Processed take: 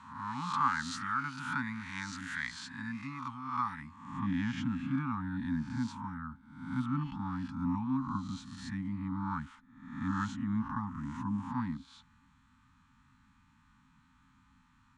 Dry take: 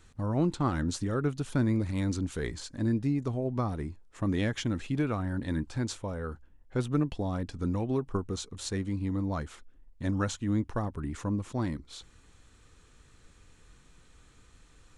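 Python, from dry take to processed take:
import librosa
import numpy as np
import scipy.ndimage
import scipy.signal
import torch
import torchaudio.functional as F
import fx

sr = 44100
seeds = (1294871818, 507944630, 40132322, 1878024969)

y = fx.spec_swells(x, sr, rise_s=0.8)
y = scipy.signal.sosfilt(scipy.signal.cheby1(5, 1.0, [270.0, 860.0], 'bandstop', fs=sr, output='sos'), y)
y = fx.filter_sweep_bandpass(y, sr, from_hz=1400.0, to_hz=470.0, start_s=3.68, end_s=4.28, q=0.93)
y = F.gain(torch.from_numpy(y), 4.5).numpy()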